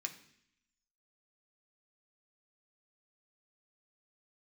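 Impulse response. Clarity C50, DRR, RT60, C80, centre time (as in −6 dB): 12.5 dB, 3.0 dB, 0.65 s, 15.0 dB, 10 ms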